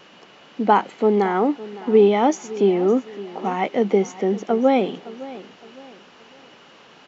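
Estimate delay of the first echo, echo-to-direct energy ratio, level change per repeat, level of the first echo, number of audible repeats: 0.562 s, -17.0 dB, -9.0 dB, -17.5 dB, 2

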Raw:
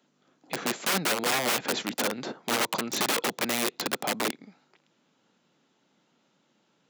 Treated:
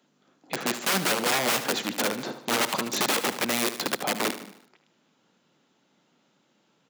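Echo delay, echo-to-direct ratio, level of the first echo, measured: 75 ms, -10.5 dB, -12.0 dB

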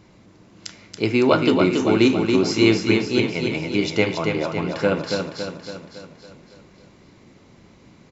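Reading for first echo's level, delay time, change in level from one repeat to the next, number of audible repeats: -5.0 dB, 0.279 s, -5.0 dB, 6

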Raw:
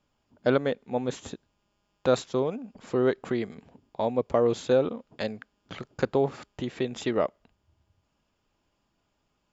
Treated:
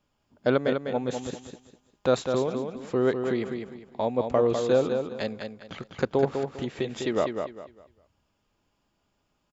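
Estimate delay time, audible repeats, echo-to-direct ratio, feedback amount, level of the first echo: 0.201 s, 3, -5.5 dB, 28%, -6.0 dB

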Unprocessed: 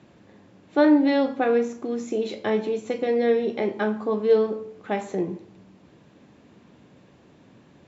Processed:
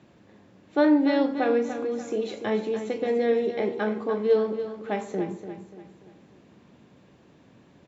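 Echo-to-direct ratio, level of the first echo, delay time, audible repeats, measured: -9.0 dB, -10.0 dB, 0.292 s, 4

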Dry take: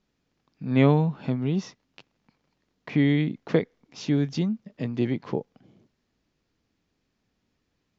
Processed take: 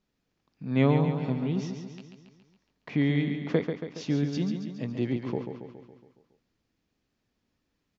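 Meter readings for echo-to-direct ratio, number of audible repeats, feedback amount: -5.5 dB, 6, 57%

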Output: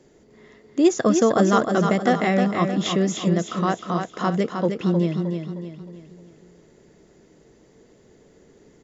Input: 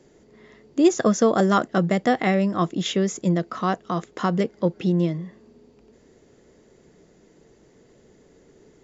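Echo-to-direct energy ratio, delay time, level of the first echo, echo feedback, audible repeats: -5.0 dB, 0.31 s, -6.0 dB, 43%, 4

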